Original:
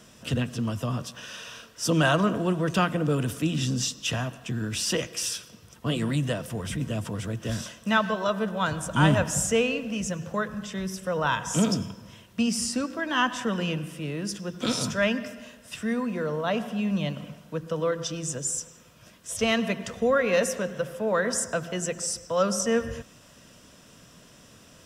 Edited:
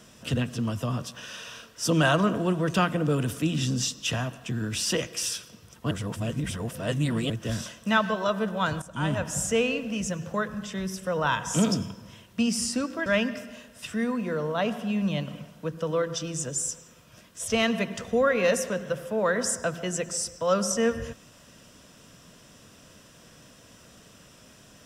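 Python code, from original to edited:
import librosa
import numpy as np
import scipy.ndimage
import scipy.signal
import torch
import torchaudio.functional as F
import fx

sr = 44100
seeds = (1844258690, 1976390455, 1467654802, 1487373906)

y = fx.edit(x, sr, fx.reverse_span(start_s=5.91, length_s=1.39),
    fx.fade_in_from(start_s=8.82, length_s=0.88, floor_db=-14.0),
    fx.cut(start_s=13.06, length_s=1.89), tone=tone)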